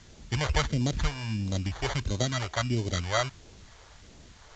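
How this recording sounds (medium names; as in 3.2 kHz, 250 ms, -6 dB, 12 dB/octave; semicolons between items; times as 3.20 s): aliases and images of a low sample rate 2.6 kHz, jitter 0%; phasing stages 2, 1.5 Hz, lowest notch 210–1400 Hz; a quantiser's noise floor 10-bit, dither triangular; A-law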